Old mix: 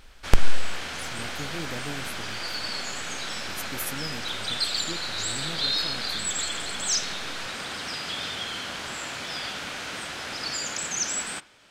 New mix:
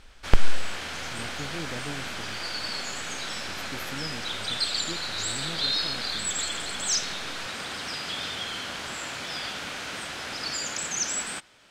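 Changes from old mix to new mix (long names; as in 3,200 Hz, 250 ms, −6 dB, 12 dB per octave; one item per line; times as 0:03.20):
speech: add moving average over 5 samples
reverb: off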